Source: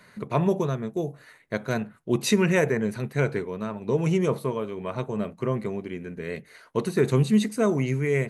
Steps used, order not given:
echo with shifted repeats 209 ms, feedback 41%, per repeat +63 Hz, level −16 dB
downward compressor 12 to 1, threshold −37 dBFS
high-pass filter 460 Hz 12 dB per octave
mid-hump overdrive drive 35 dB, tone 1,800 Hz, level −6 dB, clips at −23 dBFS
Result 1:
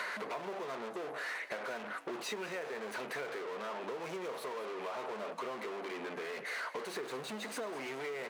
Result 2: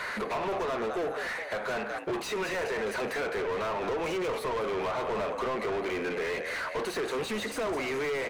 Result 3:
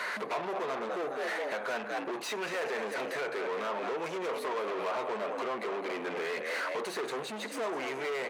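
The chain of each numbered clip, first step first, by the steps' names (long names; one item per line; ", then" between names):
mid-hump overdrive, then high-pass filter, then downward compressor, then echo with shifted repeats
high-pass filter, then downward compressor, then echo with shifted repeats, then mid-hump overdrive
echo with shifted repeats, then downward compressor, then mid-hump overdrive, then high-pass filter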